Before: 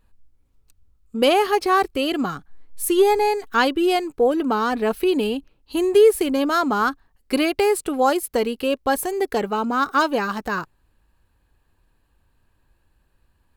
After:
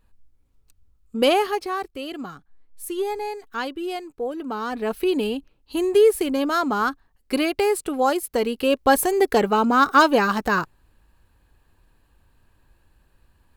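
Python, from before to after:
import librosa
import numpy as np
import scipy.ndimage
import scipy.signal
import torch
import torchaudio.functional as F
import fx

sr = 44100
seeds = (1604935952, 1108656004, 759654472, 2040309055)

y = fx.gain(x, sr, db=fx.line((1.33, -1.0), (1.76, -10.0), (4.35, -10.0), (5.06, -2.0), (8.32, -2.0), (8.89, 4.0)))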